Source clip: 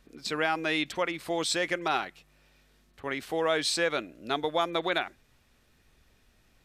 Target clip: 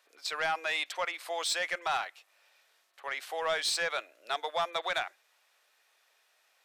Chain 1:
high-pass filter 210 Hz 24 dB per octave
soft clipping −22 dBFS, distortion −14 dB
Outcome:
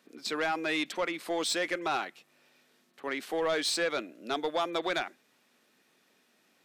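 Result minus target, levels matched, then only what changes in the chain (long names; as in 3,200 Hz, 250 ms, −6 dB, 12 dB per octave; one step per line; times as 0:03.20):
250 Hz band +19.0 dB
change: high-pass filter 600 Hz 24 dB per octave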